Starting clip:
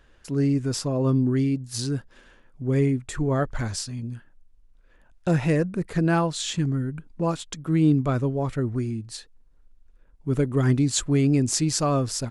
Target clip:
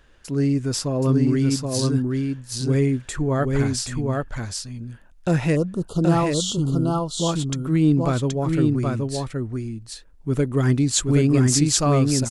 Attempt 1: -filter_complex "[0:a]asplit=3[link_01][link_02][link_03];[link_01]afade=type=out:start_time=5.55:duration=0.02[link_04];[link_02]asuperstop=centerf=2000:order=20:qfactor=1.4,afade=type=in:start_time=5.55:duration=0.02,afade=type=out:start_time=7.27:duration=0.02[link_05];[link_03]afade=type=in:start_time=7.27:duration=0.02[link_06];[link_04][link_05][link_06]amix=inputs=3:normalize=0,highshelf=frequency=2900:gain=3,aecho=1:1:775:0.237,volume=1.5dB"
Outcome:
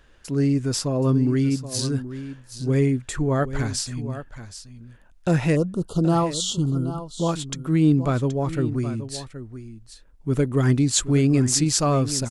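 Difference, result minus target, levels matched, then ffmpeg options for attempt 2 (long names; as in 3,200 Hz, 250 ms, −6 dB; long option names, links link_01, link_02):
echo-to-direct −9.5 dB
-filter_complex "[0:a]asplit=3[link_01][link_02][link_03];[link_01]afade=type=out:start_time=5.55:duration=0.02[link_04];[link_02]asuperstop=centerf=2000:order=20:qfactor=1.4,afade=type=in:start_time=5.55:duration=0.02,afade=type=out:start_time=7.27:duration=0.02[link_05];[link_03]afade=type=in:start_time=7.27:duration=0.02[link_06];[link_04][link_05][link_06]amix=inputs=3:normalize=0,highshelf=frequency=2900:gain=3,aecho=1:1:775:0.708,volume=1.5dB"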